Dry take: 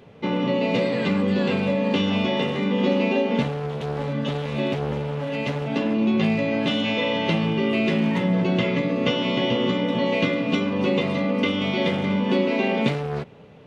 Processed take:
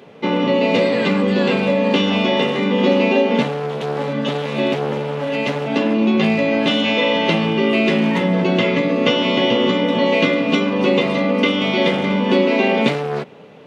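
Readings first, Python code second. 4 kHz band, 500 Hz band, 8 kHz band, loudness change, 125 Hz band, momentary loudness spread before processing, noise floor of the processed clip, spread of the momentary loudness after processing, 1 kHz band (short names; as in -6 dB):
+7.0 dB, +7.0 dB, n/a, +5.5 dB, +1.5 dB, 5 LU, -25 dBFS, 6 LU, +7.0 dB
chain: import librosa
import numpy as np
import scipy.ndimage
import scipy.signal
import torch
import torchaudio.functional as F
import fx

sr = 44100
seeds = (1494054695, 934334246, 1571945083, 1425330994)

y = scipy.signal.sosfilt(scipy.signal.butter(2, 210.0, 'highpass', fs=sr, output='sos'), x)
y = F.gain(torch.from_numpy(y), 7.0).numpy()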